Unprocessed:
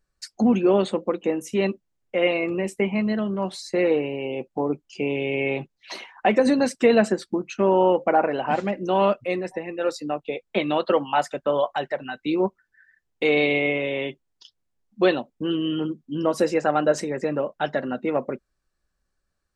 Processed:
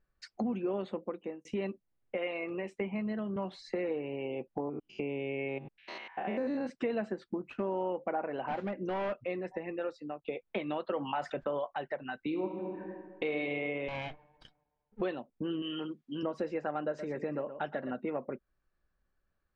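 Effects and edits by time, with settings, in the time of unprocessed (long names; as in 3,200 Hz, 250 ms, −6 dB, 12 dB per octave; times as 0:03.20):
0:00.93–0:01.45: fade out
0:02.17–0:02.81: low-shelf EQ 340 Hz −10 dB
0:03.36–0:03.89: multiband upward and downward compressor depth 40%
0:04.60–0:06.70: spectrum averaged block by block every 100 ms
0:07.28–0:07.83: running median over 9 samples
0:08.47–0:09.13: hard clipping −20 dBFS
0:09.76–0:10.24: fade out, to −17.5 dB
0:10.94–0:11.59: envelope flattener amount 50%
0:12.19–0:13.36: thrown reverb, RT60 1.5 s, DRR 3.5 dB
0:13.88–0:15.01: lower of the sound and its delayed copy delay 1.3 ms
0:15.62–0:16.23: spectral tilt +3.5 dB per octave
0:16.87–0:17.91: single-tap delay 118 ms −13 dB
whole clip: low-pass filter 2,700 Hz 12 dB per octave; downward compressor 3 to 1, threshold −33 dBFS; level −2 dB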